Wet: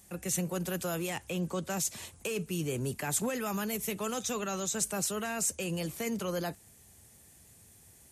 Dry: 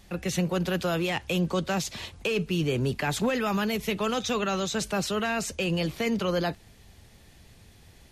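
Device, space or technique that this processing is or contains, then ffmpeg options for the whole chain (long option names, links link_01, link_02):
budget condenser microphone: -filter_complex "[0:a]highpass=69,highshelf=frequency=5900:width_type=q:width=1.5:gain=12.5,asettb=1/sr,asplit=3[link_01][link_02][link_03];[link_01]atrim=end=1.204[link_04];[link_02]atrim=start=1.2:end=1.7,asetpts=PTS-STARTPTS,afade=type=in:duration=0.004:curve=qsin,afade=type=out:start_time=0.496:duration=0.004:curve=qsin,acrossover=split=4700[link_05][link_06];[link_06]acompressor=threshold=-42dB:ratio=4:attack=1:release=60[link_07];[link_05][link_07]amix=inputs=2:normalize=0[link_08];[link_03]atrim=start=1.696[link_09];[link_04][link_08]acrossfade=duration=0.004:curve1=hsin:curve2=qsin[link_10];[link_10][link_09]acrossfade=duration=0.004:curve1=qsin:curve2=hsin,volume=-7dB"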